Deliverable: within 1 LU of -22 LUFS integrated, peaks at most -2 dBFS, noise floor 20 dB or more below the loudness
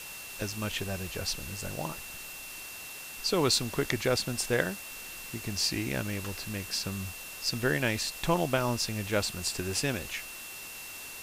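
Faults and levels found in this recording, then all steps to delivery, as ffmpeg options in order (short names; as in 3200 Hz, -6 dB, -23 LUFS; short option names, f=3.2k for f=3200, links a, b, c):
steady tone 2700 Hz; tone level -45 dBFS; noise floor -43 dBFS; noise floor target -52 dBFS; loudness -31.5 LUFS; peak -10.0 dBFS; loudness target -22.0 LUFS
-> -af "bandreject=f=2.7k:w=30"
-af "afftdn=nr=9:nf=-43"
-af "volume=9.5dB,alimiter=limit=-2dB:level=0:latency=1"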